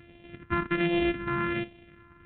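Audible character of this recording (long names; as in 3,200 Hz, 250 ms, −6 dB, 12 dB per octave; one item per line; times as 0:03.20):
a buzz of ramps at a fixed pitch in blocks of 128 samples
phaser sweep stages 4, 1.3 Hz, lowest notch 580–1,200 Hz
G.726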